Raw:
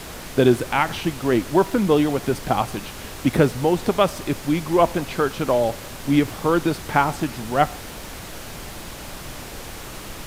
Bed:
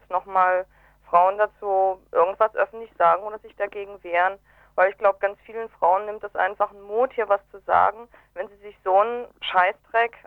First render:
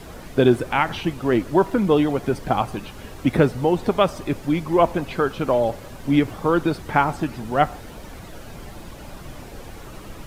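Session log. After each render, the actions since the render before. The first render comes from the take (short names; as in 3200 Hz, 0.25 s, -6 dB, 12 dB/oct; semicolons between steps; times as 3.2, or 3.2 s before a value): denoiser 10 dB, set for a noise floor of -36 dBFS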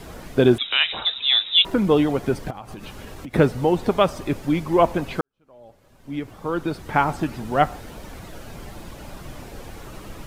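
0.58–1.65 inverted band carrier 3800 Hz; 2.5–3.34 compressor 20:1, threshold -31 dBFS; 5.21–7.1 fade in quadratic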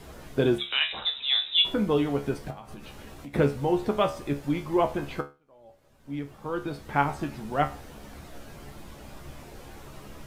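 resonator 71 Hz, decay 0.28 s, harmonics all, mix 80%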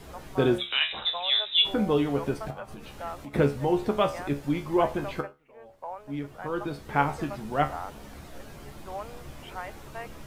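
add bed -19.5 dB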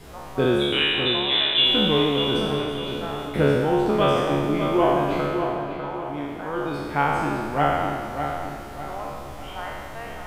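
spectral trails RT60 1.88 s; dark delay 0.6 s, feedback 40%, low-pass 3200 Hz, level -7 dB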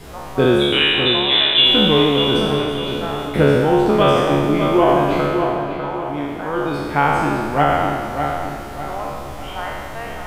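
gain +6 dB; limiter -3 dBFS, peak gain reduction 2.5 dB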